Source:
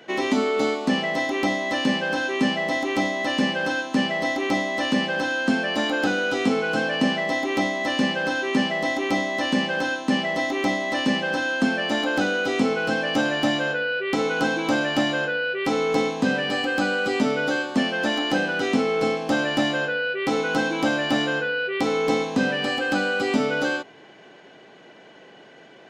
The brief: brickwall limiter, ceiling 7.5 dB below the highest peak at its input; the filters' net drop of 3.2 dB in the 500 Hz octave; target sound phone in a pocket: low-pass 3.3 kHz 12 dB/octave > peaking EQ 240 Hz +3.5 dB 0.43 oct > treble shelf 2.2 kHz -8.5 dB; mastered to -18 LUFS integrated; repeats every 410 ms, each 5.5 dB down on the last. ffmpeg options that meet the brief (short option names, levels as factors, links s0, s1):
-af "equalizer=f=500:t=o:g=-3.5,alimiter=limit=0.141:level=0:latency=1,lowpass=3300,equalizer=f=240:t=o:w=0.43:g=3.5,highshelf=f=2200:g=-8.5,aecho=1:1:410|820|1230|1640|2050|2460|2870:0.531|0.281|0.149|0.079|0.0419|0.0222|0.0118,volume=2.51"